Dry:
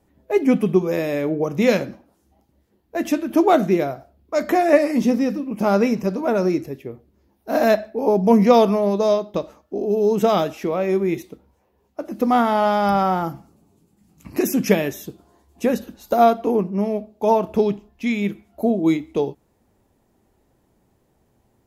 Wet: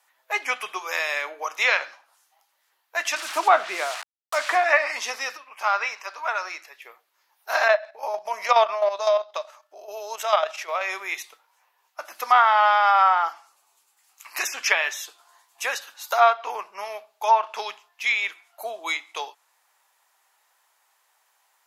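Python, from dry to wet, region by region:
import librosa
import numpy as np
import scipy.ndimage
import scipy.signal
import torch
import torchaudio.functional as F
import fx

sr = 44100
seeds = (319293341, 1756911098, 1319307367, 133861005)

y = fx.chain(x, sr, fx.tilt_eq(slope=-3.0),
    fx.quant_dither(seeds[0], bits=6, dither='none'), at=(3.16, 4.64))
y = fx.chain(y, sr, fx.lowpass(hz=2700.0, slope=6),
    fx.low_shelf(hz=490.0, db=-11.5), at=(5.37, 6.82))
y = fx.chain(y, sr, fx.highpass(hz=130.0, slope=12),
    fx.peak_eq(hz=610.0, db=12.5, octaves=0.22),
    fx.level_steps(step_db=10), at=(7.68, 10.81))
y = scipy.signal.sosfilt(scipy.signal.butter(4, 1000.0, 'highpass', fs=sr, output='sos'), y)
y = fx.env_lowpass_down(y, sr, base_hz=2800.0, full_db=-23.5)
y = y * librosa.db_to_amplitude(8.5)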